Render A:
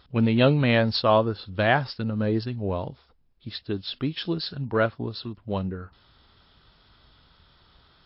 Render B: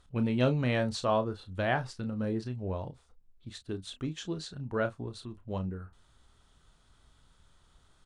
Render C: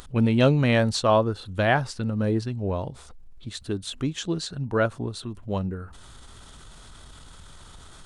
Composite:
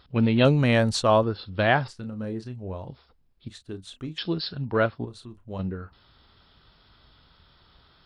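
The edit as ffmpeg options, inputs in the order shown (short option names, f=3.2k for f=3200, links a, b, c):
-filter_complex "[1:a]asplit=3[a][b][c];[0:a]asplit=5[d][e][f][g][h];[d]atrim=end=0.452[i];[2:a]atrim=start=0.448:end=1.232[j];[e]atrim=start=1.228:end=1.882[k];[a]atrim=start=1.878:end=2.882[l];[f]atrim=start=2.878:end=3.482[m];[b]atrim=start=3.478:end=4.182[n];[g]atrim=start=4.178:end=5.052[o];[c]atrim=start=5.048:end=5.592[p];[h]atrim=start=5.588[q];[i][j]acrossfade=d=0.004:c1=hsin:c2=hsin[r];[r][k]acrossfade=d=0.004:c1=hsin:c2=hsin[s];[s][l]acrossfade=d=0.004:c1=hsin:c2=hsin[t];[t][m]acrossfade=d=0.004:c1=hsin:c2=hsin[u];[u][n]acrossfade=d=0.004:c1=hsin:c2=hsin[v];[v][o]acrossfade=d=0.004:c1=hsin:c2=hsin[w];[w][p]acrossfade=d=0.004:c1=hsin:c2=hsin[x];[x][q]acrossfade=d=0.004:c1=hsin:c2=hsin"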